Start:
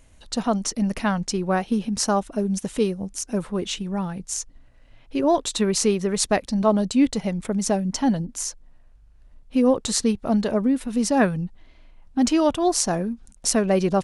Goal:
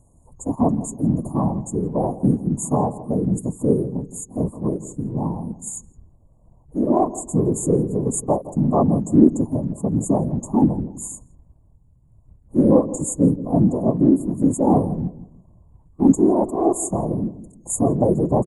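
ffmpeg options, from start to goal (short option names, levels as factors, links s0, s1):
-filter_complex "[0:a]afftfilt=real='re*(1-between(b*sr/4096,1100,6600))':imag='im*(1-between(b*sr/4096,1100,6600))':win_size=4096:overlap=0.75,adynamicequalizer=threshold=0.02:dfrequency=250:dqfactor=1.5:tfrequency=250:tqfactor=1.5:attack=5:release=100:ratio=0.375:range=2.5:mode=boostabove:tftype=bell,atempo=0.76,afftfilt=real='hypot(re,im)*cos(2*PI*random(0))':imag='hypot(re,im)*sin(2*PI*random(1))':win_size=512:overlap=0.75,asplit=2[s0][s1];[s1]adelay=166,lowpass=f=920:p=1,volume=0.188,asplit=2[s2][s3];[s3]adelay=166,lowpass=f=920:p=1,volume=0.33,asplit=2[s4][s5];[s5]adelay=166,lowpass=f=920:p=1,volume=0.33[s6];[s0][s2][s4][s6]amix=inputs=4:normalize=0,volume=1.88"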